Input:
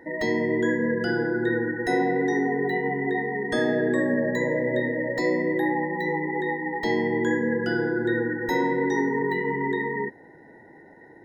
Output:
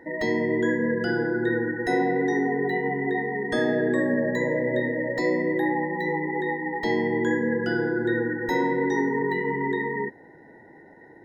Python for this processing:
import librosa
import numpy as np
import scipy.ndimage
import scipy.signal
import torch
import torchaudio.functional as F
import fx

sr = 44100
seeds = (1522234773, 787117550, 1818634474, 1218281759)

y = fx.high_shelf(x, sr, hz=6300.0, db=-4.0)